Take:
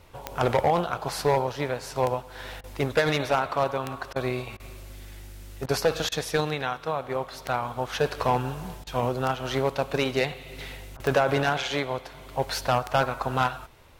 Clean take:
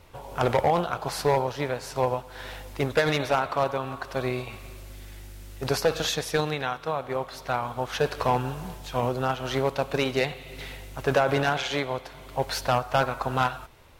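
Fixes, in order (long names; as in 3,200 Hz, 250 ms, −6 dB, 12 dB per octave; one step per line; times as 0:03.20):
click removal
repair the gap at 0:02.61/0:04.13/0:04.57/0:05.66/0:06.09/0:08.84/0:10.97, 27 ms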